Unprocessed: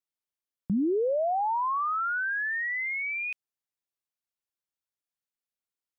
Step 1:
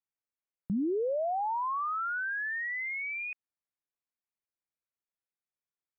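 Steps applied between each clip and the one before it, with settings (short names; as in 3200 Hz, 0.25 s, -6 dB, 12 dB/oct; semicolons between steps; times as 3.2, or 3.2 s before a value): steep low-pass 2600 Hz 96 dB/oct; gain -4 dB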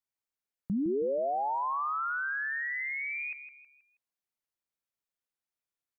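feedback echo 0.16 s, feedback 38%, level -10.5 dB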